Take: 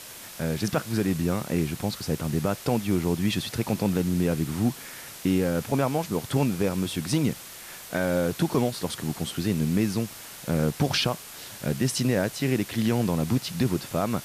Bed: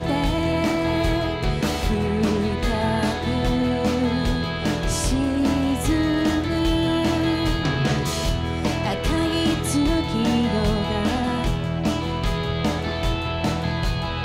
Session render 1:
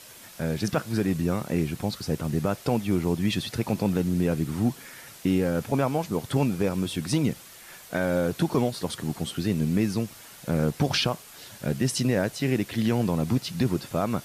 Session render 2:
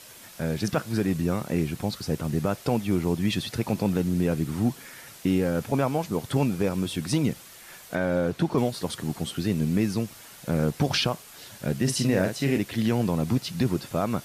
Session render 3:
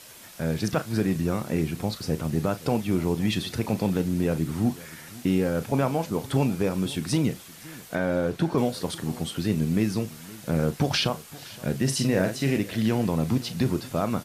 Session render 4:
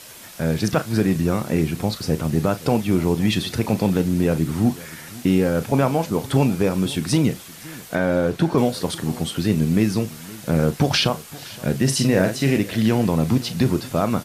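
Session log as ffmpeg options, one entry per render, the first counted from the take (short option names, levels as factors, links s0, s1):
-af "afftdn=nr=6:nf=-43"
-filter_complex "[0:a]asettb=1/sr,asplit=3[s0][s1][s2];[s0]atrim=end=7.954[s3];[s1]atrim=start=7.95:end=8.58,asetpts=PTS-STARTPTS,afade=t=in:d=0.004:c=qsin,afade=t=out:st=0.626:d=0.004:c=qsin,lowpass=f=3500:p=1[s4];[s2]atrim=start=8.576[s5];[s3][s4]acrossfade=d=0.004:c1=hsin:c2=qsin[s6];[s6][s5]acrossfade=d=0.004:c1=qsin:c2=hsin,asettb=1/sr,asplit=3[s7][s8][s9];[s7]atrim=end=11.834[s10];[s8]atrim=start=11.83:end=12.58,asetpts=PTS-STARTPTS,afade=t=in:d=0.004:c=qsin,afade=t=out:st=0.746:d=0.004:c=qsin,asplit=2[s11][s12];[s12]adelay=43,volume=0.501[s13];[s11][s13]amix=inputs=2:normalize=0,atrim=end_sample=33075[s14];[s9]atrim=start=12.576[s15];[s10][s14]acrossfade=d=0.004:c1=hsin:c2=qsin[s16];[s16][s15]acrossfade=d=0.004:c1=qsin:c2=hsin"
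-filter_complex "[0:a]asplit=2[s0][s1];[s1]adelay=37,volume=0.224[s2];[s0][s2]amix=inputs=2:normalize=0,aecho=1:1:517:0.0944"
-af "volume=1.88"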